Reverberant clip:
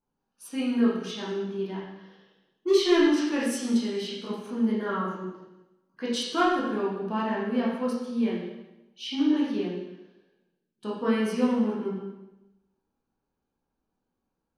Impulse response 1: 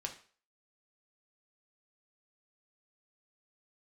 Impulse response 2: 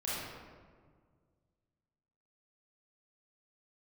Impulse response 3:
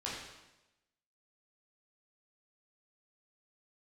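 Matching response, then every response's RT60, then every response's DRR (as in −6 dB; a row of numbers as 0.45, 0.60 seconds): 3; 0.45, 1.8, 1.0 seconds; 2.0, −9.5, −7.0 decibels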